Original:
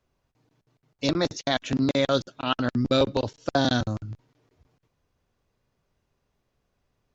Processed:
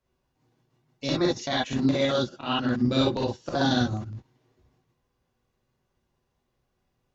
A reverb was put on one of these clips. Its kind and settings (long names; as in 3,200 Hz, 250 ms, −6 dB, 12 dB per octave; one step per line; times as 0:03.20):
reverb whose tail is shaped and stops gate 80 ms rising, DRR −4 dB
level −6.5 dB